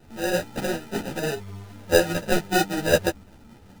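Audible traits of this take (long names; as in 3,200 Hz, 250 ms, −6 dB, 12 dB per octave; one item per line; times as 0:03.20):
aliases and images of a low sample rate 1,100 Hz, jitter 0%
a shimmering, thickened sound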